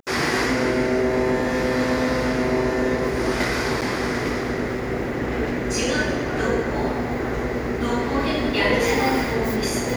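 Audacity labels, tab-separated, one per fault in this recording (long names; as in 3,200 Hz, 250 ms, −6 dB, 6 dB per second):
3.810000	3.820000	drop-out 8.1 ms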